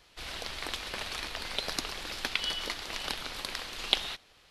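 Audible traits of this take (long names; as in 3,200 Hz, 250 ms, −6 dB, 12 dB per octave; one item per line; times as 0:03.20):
background noise floor −61 dBFS
spectral slope −2.5 dB per octave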